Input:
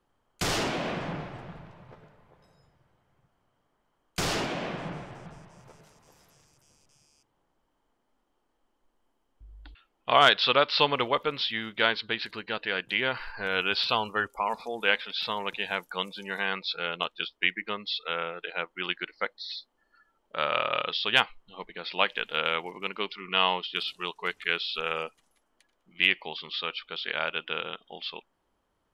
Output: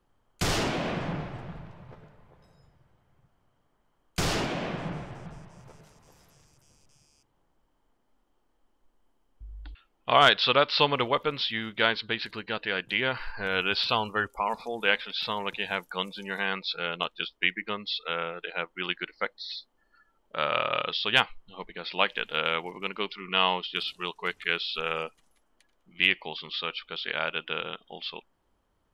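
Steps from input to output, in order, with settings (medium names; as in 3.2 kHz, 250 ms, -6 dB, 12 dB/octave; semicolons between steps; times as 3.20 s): bass shelf 150 Hz +7 dB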